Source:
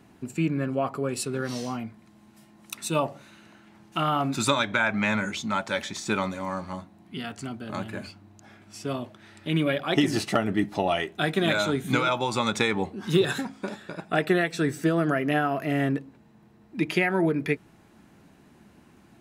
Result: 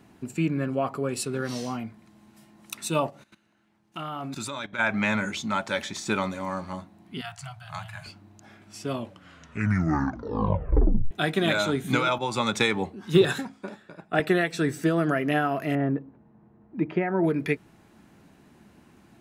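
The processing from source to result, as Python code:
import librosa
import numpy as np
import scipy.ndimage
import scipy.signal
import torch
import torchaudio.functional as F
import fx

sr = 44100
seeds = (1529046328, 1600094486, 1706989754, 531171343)

y = fx.level_steps(x, sr, step_db=17, at=(3.09, 4.78), fade=0.02)
y = fx.cheby1_bandstop(y, sr, low_hz=170.0, high_hz=660.0, order=5, at=(7.21, 8.06))
y = fx.band_widen(y, sr, depth_pct=70, at=(12.18, 14.2))
y = fx.lowpass(y, sr, hz=1200.0, slope=12, at=(15.75, 17.24))
y = fx.edit(y, sr, fx.tape_stop(start_s=8.91, length_s=2.2), tone=tone)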